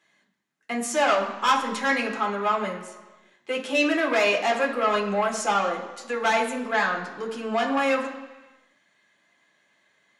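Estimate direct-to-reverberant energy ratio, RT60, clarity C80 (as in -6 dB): -2.5 dB, 1.3 s, 10.5 dB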